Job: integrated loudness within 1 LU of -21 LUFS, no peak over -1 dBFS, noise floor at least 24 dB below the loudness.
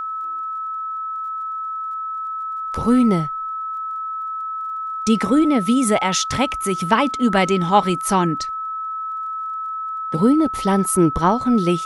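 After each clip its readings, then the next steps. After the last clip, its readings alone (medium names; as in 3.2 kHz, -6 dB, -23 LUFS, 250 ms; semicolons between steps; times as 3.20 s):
tick rate 26 per s; steady tone 1.3 kHz; tone level -24 dBFS; loudness -20.5 LUFS; peak level -1.0 dBFS; loudness target -21.0 LUFS
-> de-click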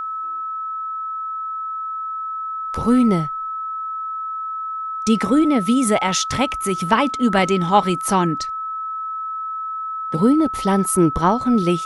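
tick rate 0.084 per s; steady tone 1.3 kHz; tone level -24 dBFS
-> band-stop 1.3 kHz, Q 30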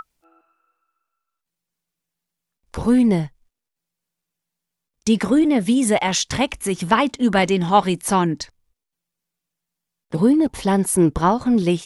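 steady tone not found; loudness -18.5 LUFS; peak level -2.0 dBFS; loudness target -21.0 LUFS
-> trim -2.5 dB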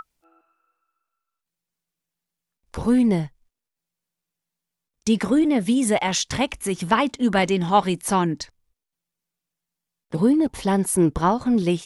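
loudness -21.0 LUFS; peak level -4.5 dBFS; noise floor -85 dBFS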